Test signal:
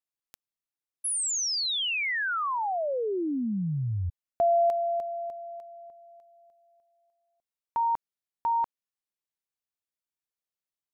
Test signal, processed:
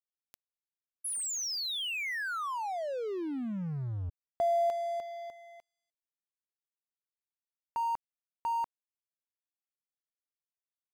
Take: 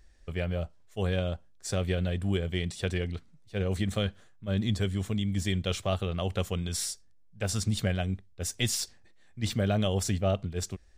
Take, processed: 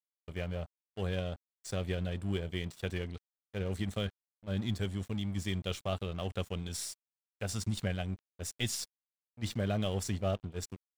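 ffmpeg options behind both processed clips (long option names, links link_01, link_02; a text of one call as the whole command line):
ffmpeg -i in.wav -af "aeval=exprs='sgn(val(0))*max(abs(val(0))-0.00708,0)':channel_layout=same,volume=-4.5dB" out.wav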